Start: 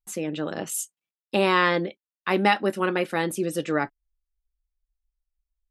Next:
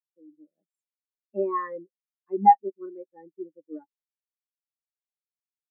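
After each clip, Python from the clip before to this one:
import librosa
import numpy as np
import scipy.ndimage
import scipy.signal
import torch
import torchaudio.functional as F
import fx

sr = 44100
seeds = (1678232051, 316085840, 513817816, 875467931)

y = fx.spectral_expand(x, sr, expansion=4.0)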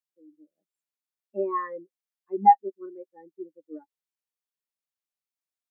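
y = fx.low_shelf(x, sr, hz=150.0, db=-10.5)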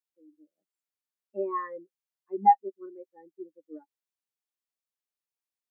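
y = scipy.signal.sosfilt(scipy.signal.butter(2, 170.0, 'highpass', fs=sr, output='sos'), x)
y = y * librosa.db_to_amplitude(-3.0)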